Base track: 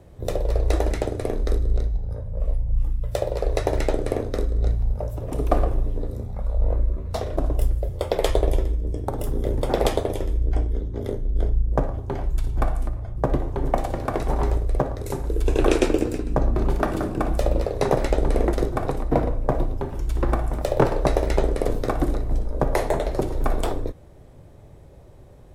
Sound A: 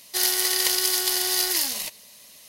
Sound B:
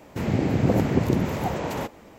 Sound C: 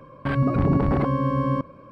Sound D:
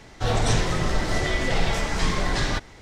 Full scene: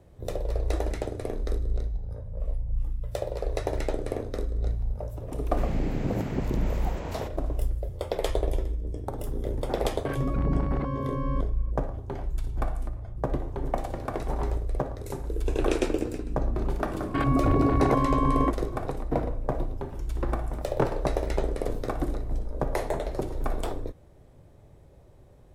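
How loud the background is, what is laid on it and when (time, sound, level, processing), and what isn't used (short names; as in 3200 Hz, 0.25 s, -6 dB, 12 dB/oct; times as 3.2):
base track -6.5 dB
5.41 add B -8.5 dB
9.8 add C -8.5 dB
16.89 add C -3 dB + comb 2.8 ms, depth 79%
not used: A, D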